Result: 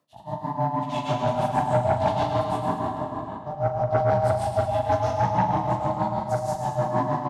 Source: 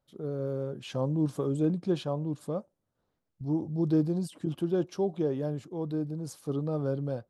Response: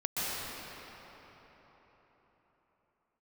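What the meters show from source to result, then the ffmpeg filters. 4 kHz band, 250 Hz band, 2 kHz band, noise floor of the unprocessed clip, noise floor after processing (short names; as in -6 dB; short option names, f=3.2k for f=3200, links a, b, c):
+7.0 dB, -1.5 dB, +15.5 dB, -82 dBFS, -37 dBFS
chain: -filter_complex "[0:a]afreqshift=94,asplit=2[a][b];[b]asoftclip=type=hard:threshold=-25dB,volume=-6dB[c];[a][c]amix=inputs=2:normalize=0[d];[1:a]atrim=start_sample=2205,asetrate=61740,aresample=44100[e];[d][e]afir=irnorm=-1:irlink=0,flanger=delay=18:depth=4.3:speed=2.4,bandreject=f=1.1k:w=6.2,tremolo=f=6.3:d=0.92,aecho=1:1:105|210|315|420|525|630|735:0.398|0.223|0.125|0.0699|0.0392|0.0219|0.0123,aeval=exprs='val(0)*sin(2*PI*370*n/s)':c=same,aeval=exprs='0.237*sin(PI/2*1.78*val(0)/0.237)':c=same,areverse,acompressor=mode=upward:threshold=-26dB:ratio=2.5,areverse,highpass=130,asplit=2[f][g];[g]adelay=41,volume=-11dB[h];[f][h]amix=inputs=2:normalize=0"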